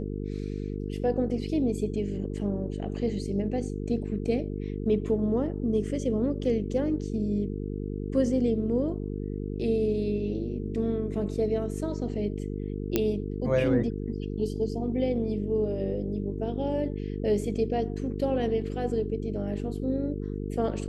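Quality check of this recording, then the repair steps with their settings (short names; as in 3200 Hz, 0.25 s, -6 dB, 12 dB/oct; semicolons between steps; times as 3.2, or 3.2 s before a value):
buzz 50 Hz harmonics 9 -33 dBFS
12.96 pop -10 dBFS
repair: de-click; de-hum 50 Hz, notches 9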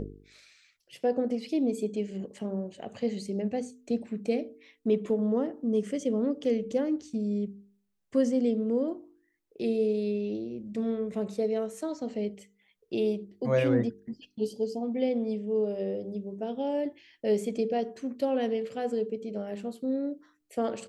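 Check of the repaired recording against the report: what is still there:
none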